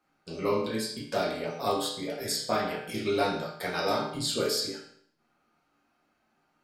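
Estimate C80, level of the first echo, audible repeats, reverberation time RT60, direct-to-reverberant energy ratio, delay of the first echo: 7.5 dB, none, none, 0.65 s, -6.5 dB, none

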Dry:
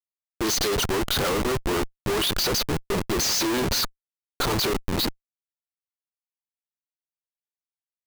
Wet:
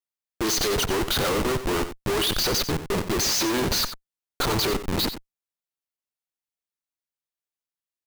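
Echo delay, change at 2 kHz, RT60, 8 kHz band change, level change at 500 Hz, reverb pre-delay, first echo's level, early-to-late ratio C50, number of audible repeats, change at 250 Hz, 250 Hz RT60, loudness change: 91 ms, +0.5 dB, none, +0.5 dB, +0.5 dB, none, -11.5 dB, none, 1, 0.0 dB, none, +0.5 dB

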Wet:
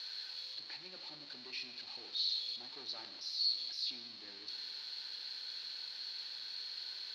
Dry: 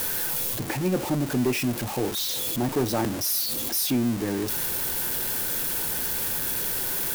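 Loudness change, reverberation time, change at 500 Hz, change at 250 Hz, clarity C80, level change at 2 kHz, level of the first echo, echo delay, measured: -15.0 dB, 1.7 s, -31.5 dB, -36.0 dB, 10.5 dB, -18.5 dB, none, none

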